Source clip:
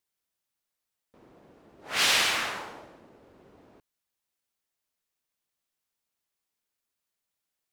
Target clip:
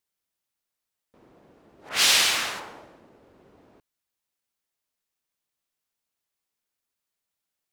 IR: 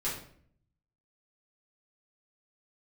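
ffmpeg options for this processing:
-filter_complex "[0:a]asettb=1/sr,asplit=3[a][b][c];[a]atrim=end=1.894[d];[b]atrim=start=1.89:end=2.6,asetpts=PTS-STARTPTS,afade=t=in:d=0.004:c=qsin,afade=t=out:st=0.706:d=0.004:c=qsin,adynamicequalizer=threshold=0.0158:dfrequency=3000:dqfactor=0.7:tfrequency=3000:tqfactor=0.7:attack=5:release=100:ratio=0.375:range=3.5:mode=boostabove:tftype=highshelf[e];[c]atrim=start=2.596[f];[d][e]acrossfade=d=0.004:c1=hsin:c2=qsin[g];[g][f]acrossfade=d=0.004:c1=qsin:c2=hsin"

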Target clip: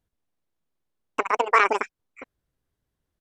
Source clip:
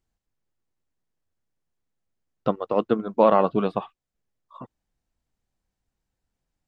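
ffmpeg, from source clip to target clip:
-af "asetrate=91728,aresample=44100,aresample=32000,aresample=44100"

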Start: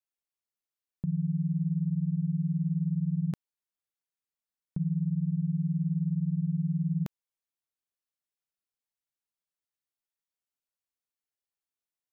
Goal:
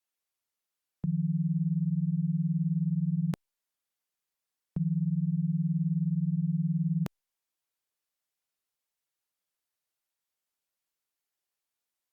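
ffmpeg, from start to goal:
-filter_complex "[0:a]acrossover=split=340[a][b];[b]acontrast=25[c];[a][c]amix=inputs=2:normalize=0" -ar 48000 -c:a libopus -b:a 96k

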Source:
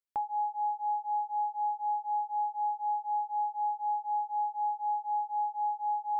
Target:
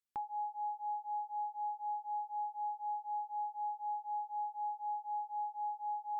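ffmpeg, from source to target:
-af "equalizer=f=650:w=2.6:g=-14,volume=-2dB"

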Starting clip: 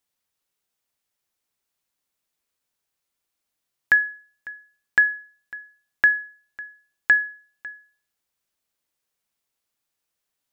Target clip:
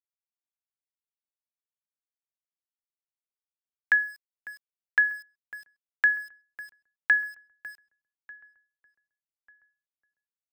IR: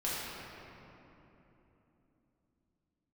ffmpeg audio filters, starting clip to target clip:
-filter_complex "[0:a]acrossover=split=100|620|1700[a][b][c][d];[b]acompressor=threshold=-57dB:ratio=6[e];[a][e][c][d]amix=inputs=4:normalize=0,aeval=exprs='val(0)*gte(abs(val(0)),0.0075)':c=same,asplit=2[f][g];[g]adelay=1193,lowpass=f=1.5k:p=1,volume=-21.5dB,asplit=2[h][i];[i]adelay=1193,lowpass=f=1.5k:p=1,volume=0.36,asplit=2[j][k];[k]adelay=1193,lowpass=f=1.5k:p=1,volume=0.36[l];[f][h][j][l]amix=inputs=4:normalize=0,volume=-4.5dB"

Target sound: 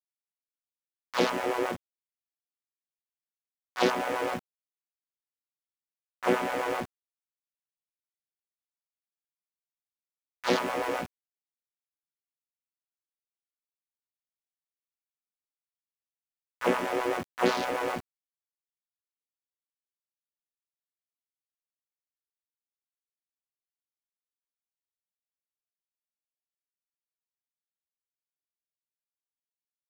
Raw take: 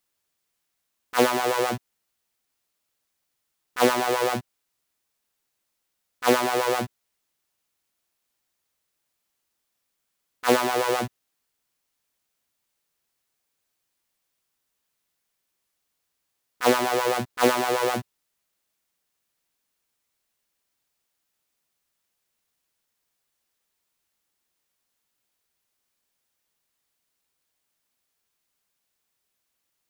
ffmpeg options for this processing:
-filter_complex "[0:a]lowpass=10k,afwtdn=0.0224,highpass=150,highshelf=f=4.5k:g=11,asplit=2[a][b];[b]asetrate=33038,aresample=44100,atempo=1.33484,volume=-3dB[c];[a][c]amix=inputs=2:normalize=0,aeval=exprs='val(0)*gte(abs(val(0)),0.0299)':c=same,volume=-7.5dB"

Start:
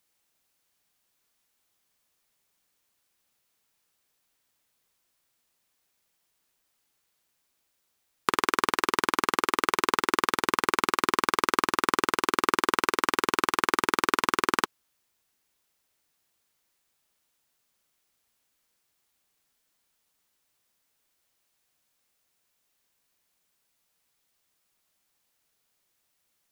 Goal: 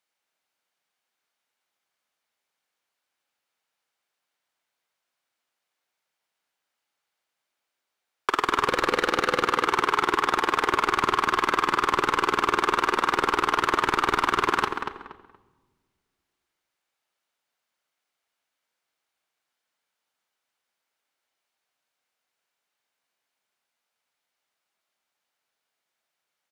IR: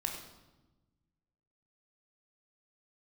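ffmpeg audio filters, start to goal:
-filter_complex "[0:a]asettb=1/sr,asplit=3[a][b][c];[a]atrim=end=8.684[d];[b]atrim=start=8.68:end=9.42,asetpts=PTS-STARTPTS,afade=t=in:d=0.004:c=qsin,afade=t=out:st=0.736:d=0.004:c=qsin,equalizer=f=500:t=o:w=0.33:g=9,equalizer=f=1k:t=o:w=0.33:g=-9,equalizer=f=4k:t=o:w=0.33:g=4[e];[c]atrim=start=9.416[f];[d][e]acrossfade=d=0.004:c1=hsin:c2=qsin[g];[g][f]acrossfade=d=0.004:c1=qsin:c2=hsin,agate=range=-17dB:threshold=-47dB:ratio=16:detection=peak,asplit=2[h][i];[i]highpass=f=720:p=1,volume=30dB,asoftclip=type=tanh:threshold=-1dB[j];[h][j]amix=inputs=2:normalize=0,lowpass=f=2.3k:p=1,volume=-6dB,asplit=2[k][l];[l]adelay=236,lowpass=f=2.5k:p=1,volume=-6dB,asplit=2[m][n];[n]adelay=236,lowpass=f=2.5k:p=1,volume=0.27,asplit=2[o][p];[p]adelay=236,lowpass=f=2.5k:p=1,volume=0.27[q];[k][m][o][q]amix=inputs=4:normalize=0,asplit=2[r][s];[1:a]atrim=start_sample=2205,asetrate=34398,aresample=44100[t];[s][t]afir=irnorm=-1:irlink=0,volume=-12dB[u];[r][u]amix=inputs=2:normalize=0,volume=-8.5dB"

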